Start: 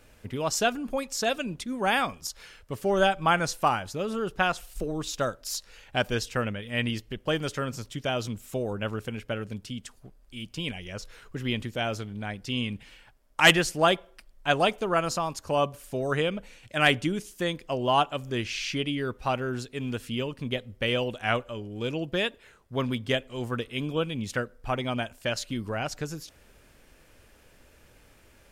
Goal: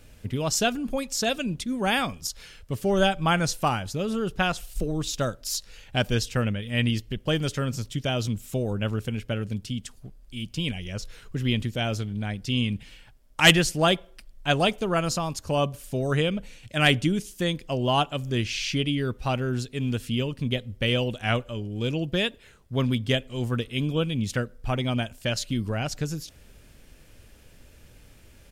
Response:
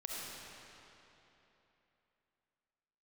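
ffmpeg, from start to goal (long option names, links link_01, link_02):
-af "firequalizer=gain_entry='entry(130,0);entry(350,-6);entry(1000,-10);entry(3200,-4)':delay=0.05:min_phase=1,volume=7.5dB"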